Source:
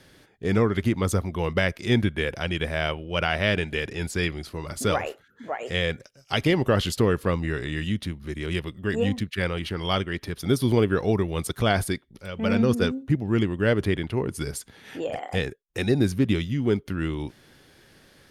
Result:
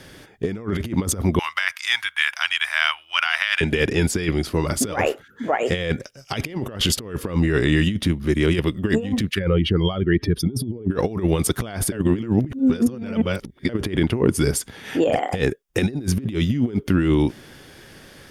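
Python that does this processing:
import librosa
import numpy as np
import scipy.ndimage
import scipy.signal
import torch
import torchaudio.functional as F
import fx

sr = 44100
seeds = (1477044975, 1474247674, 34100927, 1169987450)

y = fx.cheby2_highpass(x, sr, hz=520.0, order=4, stop_db=40, at=(1.39, 3.61))
y = fx.spec_expand(y, sr, power=1.7, at=(9.38, 10.9), fade=0.02)
y = fx.edit(y, sr, fx.reverse_span(start_s=11.92, length_s=1.77), tone=tone)
y = fx.over_compress(y, sr, threshold_db=-28.0, ratio=-0.5)
y = fx.dynamic_eq(y, sr, hz=280.0, q=1.0, threshold_db=-41.0, ratio=4.0, max_db=5)
y = fx.notch(y, sr, hz=4100.0, q=13.0)
y = y * librosa.db_to_amplitude(6.0)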